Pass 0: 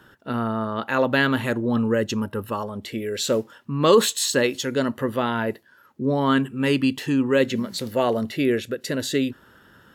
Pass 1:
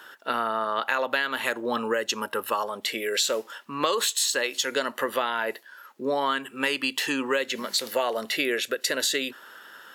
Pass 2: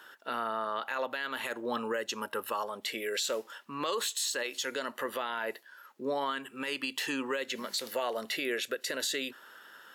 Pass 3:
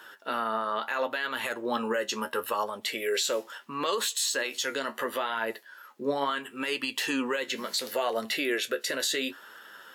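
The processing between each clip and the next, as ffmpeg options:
ffmpeg -i in.wav -af "highpass=520,tiltshelf=frequency=970:gain=-3,acompressor=threshold=-28dB:ratio=10,volume=6.5dB" out.wav
ffmpeg -i in.wav -af "alimiter=limit=-16.5dB:level=0:latency=1:release=19,volume=-6dB" out.wav
ffmpeg -i in.wav -af "flanger=delay=8.4:depth=6.5:regen=48:speed=0.73:shape=triangular,volume=8dB" out.wav

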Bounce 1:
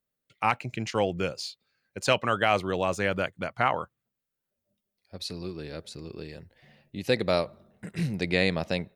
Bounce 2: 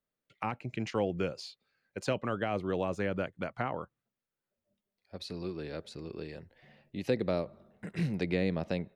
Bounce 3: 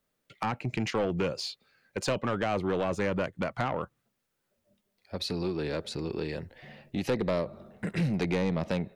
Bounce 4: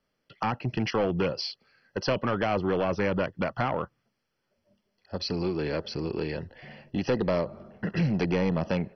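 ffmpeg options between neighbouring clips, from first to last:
ffmpeg -i in.wav -filter_complex "[0:a]equalizer=frequency=89:width_type=o:width=2.1:gain=-4.5,acrossover=split=440[link_01][link_02];[link_02]acompressor=threshold=-35dB:ratio=4[link_03];[link_01][link_03]amix=inputs=2:normalize=0,highshelf=frequency=4600:gain=-11.5" out.wav
ffmpeg -i in.wav -filter_complex "[0:a]asplit=2[link_01][link_02];[link_02]acompressor=threshold=-38dB:ratio=6,volume=2dB[link_03];[link_01][link_03]amix=inputs=2:normalize=0,asoftclip=type=tanh:threshold=-25.5dB,volume=3.5dB" out.wav
ffmpeg -i in.wav -af "volume=2.5dB" -ar 32000 -c:a mp2 -b:a 32k out.mp2

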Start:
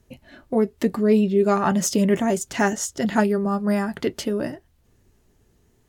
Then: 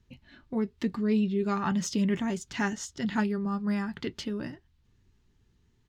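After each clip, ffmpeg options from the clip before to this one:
ffmpeg -i in.wav -af "firequalizer=gain_entry='entry(140,0);entry(630,-14);entry(900,-4);entry(3700,1);entry(10000,-16)':delay=0.05:min_phase=1,volume=-4.5dB" out.wav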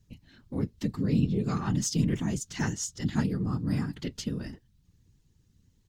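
ffmpeg -i in.wav -af "afftfilt=real='hypot(re,im)*cos(2*PI*random(0))':imag='hypot(re,im)*sin(2*PI*random(1))':win_size=512:overlap=0.75,bass=frequency=250:gain=10,treble=frequency=4000:gain=13" out.wav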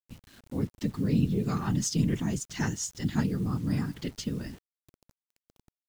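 ffmpeg -i in.wav -af "acrusher=bits=8:mix=0:aa=0.000001" out.wav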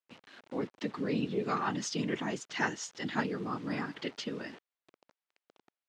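ffmpeg -i in.wav -af "highpass=450,lowpass=3200,volume=5.5dB" out.wav

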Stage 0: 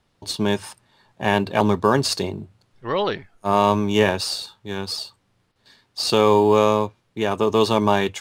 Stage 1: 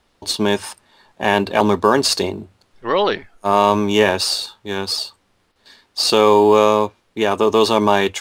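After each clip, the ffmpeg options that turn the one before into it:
ffmpeg -i in.wav -filter_complex "[0:a]equalizer=frequency=130:width_type=o:width=0.82:gain=-13.5,asplit=2[link_01][link_02];[link_02]alimiter=limit=-13.5dB:level=0:latency=1:release=30,volume=-2.5dB[link_03];[link_01][link_03]amix=inputs=2:normalize=0,volume=1.5dB" out.wav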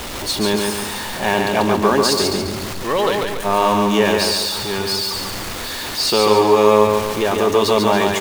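ffmpeg -i in.wav -filter_complex "[0:a]aeval=exprs='val(0)+0.5*0.112*sgn(val(0))':channel_layout=same,asplit=2[link_01][link_02];[link_02]aecho=0:1:141|282|423|564|705|846:0.668|0.314|0.148|0.0694|0.0326|0.0153[link_03];[link_01][link_03]amix=inputs=2:normalize=0,volume=-4dB" out.wav

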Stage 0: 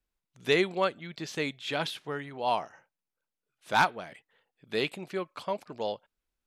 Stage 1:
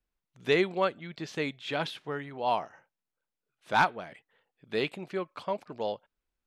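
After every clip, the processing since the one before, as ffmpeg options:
ffmpeg -i in.wav -af "aemphasis=mode=reproduction:type=cd" out.wav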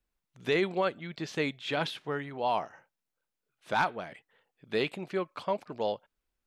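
ffmpeg -i in.wav -af "alimiter=limit=-20dB:level=0:latency=1:release=20,volume=1.5dB" out.wav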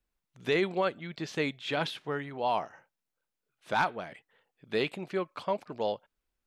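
ffmpeg -i in.wav -af anull out.wav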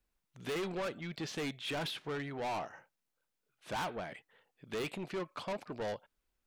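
ffmpeg -i in.wav -af "asoftclip=type=tanh:threshold=-35dB,volume=1dB" out.wav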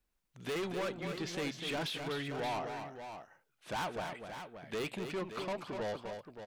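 ffmpeg -i in.wav -af "aecho=1:1:249|575:0.447|0.335" out.wav

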